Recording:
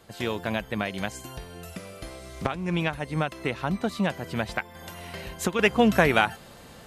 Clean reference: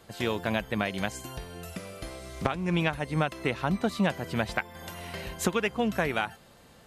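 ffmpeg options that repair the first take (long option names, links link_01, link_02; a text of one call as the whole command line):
ffmpeg -i in.wav -af "asetnsamples=nb_out_samples=441:pad=0,asendcmd='5.59 volume volume -8dB',volume=0dB" out.wav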